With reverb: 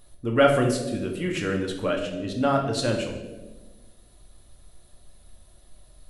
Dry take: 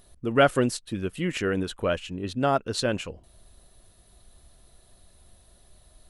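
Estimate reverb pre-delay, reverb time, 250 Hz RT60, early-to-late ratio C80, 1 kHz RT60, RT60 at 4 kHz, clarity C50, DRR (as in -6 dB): 4 ms, 1.3 s, 1.7 s, 9.0 dB, 1.0 s, 0.85 s, 6.0 dB, 1.0 dB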